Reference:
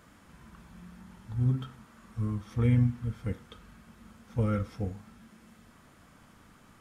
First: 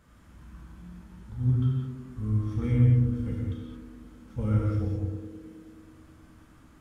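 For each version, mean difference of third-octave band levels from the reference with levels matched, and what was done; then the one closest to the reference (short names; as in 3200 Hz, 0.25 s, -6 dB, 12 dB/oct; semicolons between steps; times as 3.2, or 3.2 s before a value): 5.5 dB: low shelf 140 Hz +10.5 dB; narrowing echo 0.107 s, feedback 82%, band-pass 320 Hz, level -4 dB; non-linear reverb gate 0.24 s flat, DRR -3 dB; gain -7.5 dB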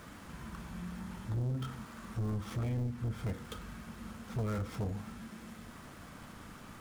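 11.0 dB: switching dead time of 0.081 ms; compressor 10:1, threshold -32 dBFS, peak gain reduction 13 dB; soft clip -38 dBFS, distortion -8 dB; gain +7.5 dB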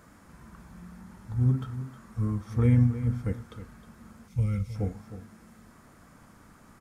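2.0 dB: spectral gain 4.28–4.76, 210–2000 Hz -14 dB; bell 3100 Hz -8 dB 0.83 oct; on a send: echo 0.313 s -12.5 dB; on the sum: gain +3 dB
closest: third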